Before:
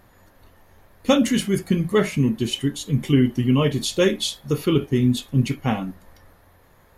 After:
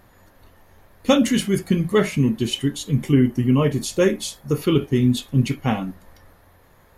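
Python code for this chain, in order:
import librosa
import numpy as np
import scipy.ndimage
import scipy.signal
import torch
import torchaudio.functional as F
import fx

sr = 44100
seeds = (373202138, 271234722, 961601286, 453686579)

y = fx.peak_eq(x, sr, hz=3500.0, db=-9.5, octaves=0.75, at=(3.04, 4.62))
y = F.gain(torch.from_numpy(y), 1.0).numpy()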